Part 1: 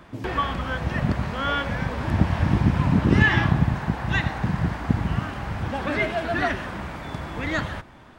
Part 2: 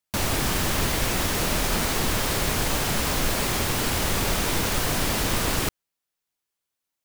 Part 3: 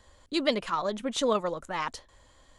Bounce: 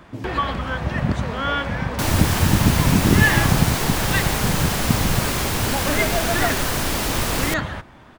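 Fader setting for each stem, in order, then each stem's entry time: +2.0, +1.5, -10.5 dB; 0.00, 1.85, 0.00 s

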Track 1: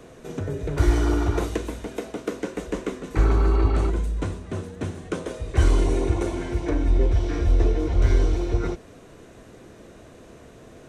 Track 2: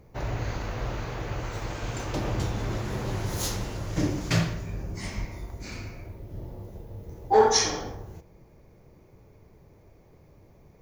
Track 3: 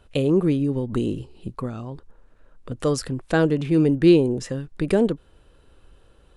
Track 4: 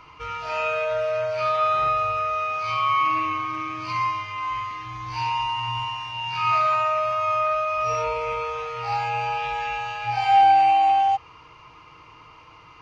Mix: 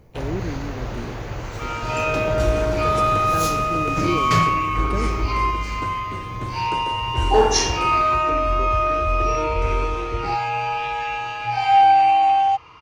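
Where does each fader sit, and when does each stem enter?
-5.0, +2.5, -10.5, +2.0 dB; 1.60, 0.00, 0.00, 1.40 s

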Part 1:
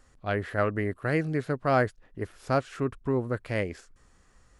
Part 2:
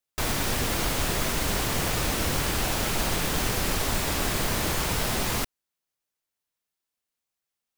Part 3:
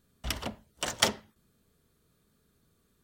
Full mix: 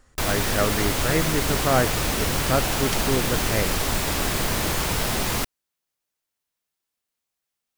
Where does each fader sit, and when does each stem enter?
+2.5, +2.5, -8.0 dB; 0.00, 0.00, 1.90 s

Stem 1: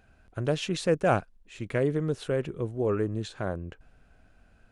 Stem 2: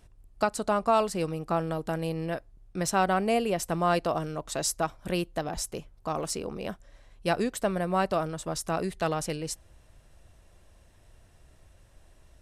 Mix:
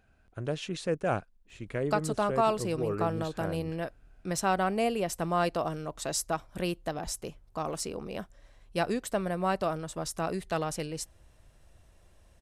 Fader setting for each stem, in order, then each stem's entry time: -5.5, -2.5 dB; 0.00, 1.50 s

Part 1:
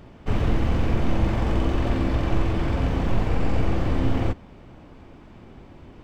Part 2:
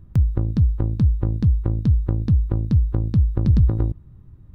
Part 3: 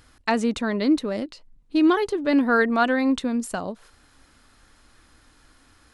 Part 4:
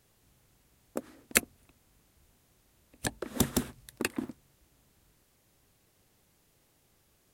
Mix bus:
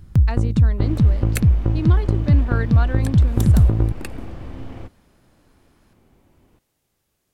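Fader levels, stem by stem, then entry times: -12.0, +2.5, -9.0, -4.0 dB; 0.55, 0.00, 0.00, 0.00 s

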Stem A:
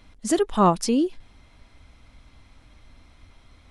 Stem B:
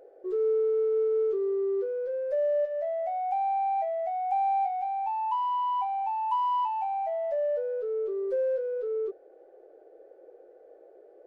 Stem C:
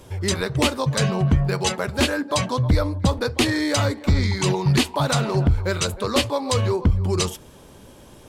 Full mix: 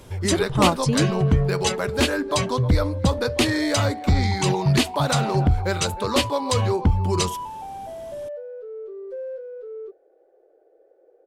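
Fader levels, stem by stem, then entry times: -2.5, -5.0, -0.5 dB; 0.00, 0.80, 0.00 s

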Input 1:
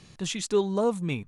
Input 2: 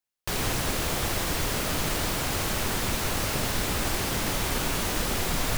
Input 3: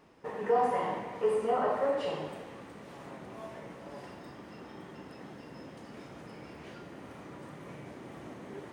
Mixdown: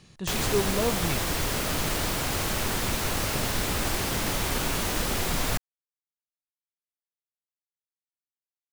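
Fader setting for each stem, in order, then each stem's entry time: -2.5 dB, 0.0 dB, off; 0.00 s, 0.00 s, off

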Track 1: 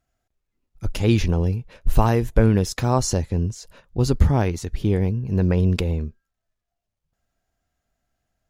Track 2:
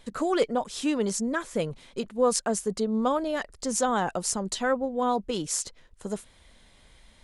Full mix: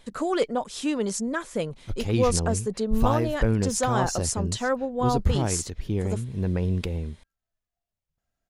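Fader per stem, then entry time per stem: -6.5, 0.0 dB; 1.05, 0.00 s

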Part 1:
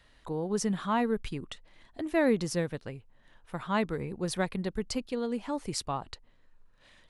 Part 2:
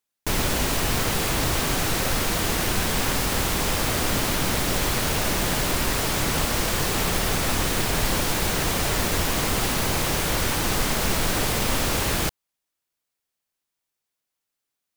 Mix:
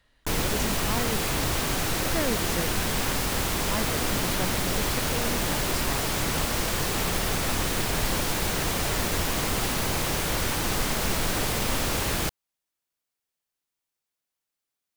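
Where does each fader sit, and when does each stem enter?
-4.5, -3.0 dB; 0.00, 0.00 s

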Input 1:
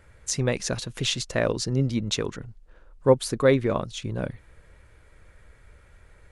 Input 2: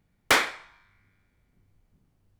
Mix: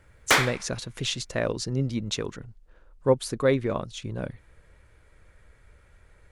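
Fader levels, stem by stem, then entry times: -3.0, +0.5 dB; 0.00, 0.00 s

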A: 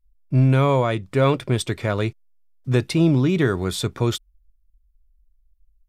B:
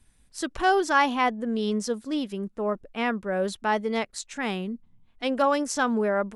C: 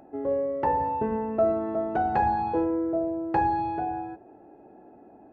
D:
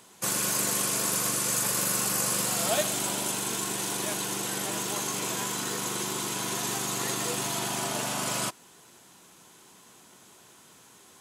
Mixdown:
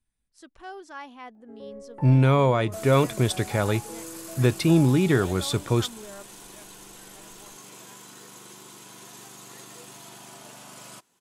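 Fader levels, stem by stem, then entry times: -1.5, -19.0, -16.0, -14.5 dB; 1.70, 0.00, 1.35, 2.50 s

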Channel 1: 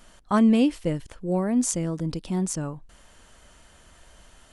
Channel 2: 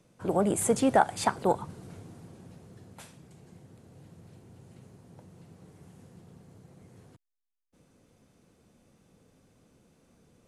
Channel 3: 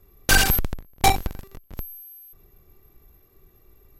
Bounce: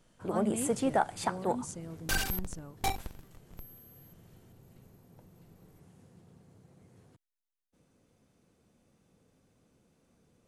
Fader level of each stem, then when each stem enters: -16.5, -5.5, -14.0 dB; 0.00, 0.00, 1.80 s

